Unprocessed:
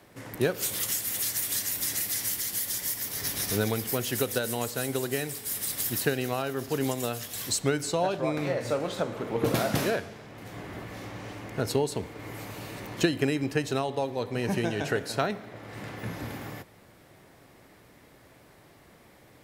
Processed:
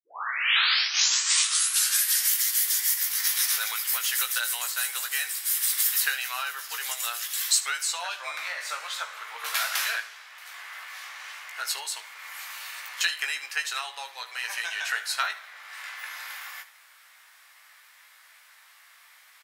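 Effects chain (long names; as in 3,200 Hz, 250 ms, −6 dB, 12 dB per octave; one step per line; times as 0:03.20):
turntable start at the beginning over 2.31 s
high-pass filter 1,200 Hz 24 dB per octave
on a send: ambience of single reflections 17 ms −5.5 dB, 76 ms −15.5 dB
on the sum: level +5.5 dB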